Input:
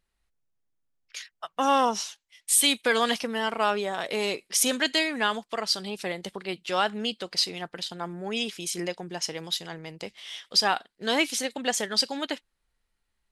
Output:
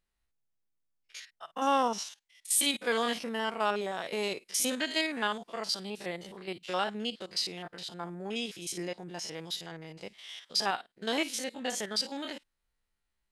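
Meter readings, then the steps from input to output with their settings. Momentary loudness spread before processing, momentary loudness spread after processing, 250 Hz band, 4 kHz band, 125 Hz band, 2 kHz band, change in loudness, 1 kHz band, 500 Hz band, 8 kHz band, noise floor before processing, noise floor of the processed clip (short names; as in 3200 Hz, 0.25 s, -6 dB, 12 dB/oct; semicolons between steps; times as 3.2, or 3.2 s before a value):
14 LU, 15 LU, -4.5 dB, -6.5 dB, -4.5 dB, -6.5 dB, -6.0 dB, -5.0 dB, -5.0 dB, -6.0 dB, -79 dBFS, -82 dBFS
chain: stepped spectrum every 50 ms; gain -4 dB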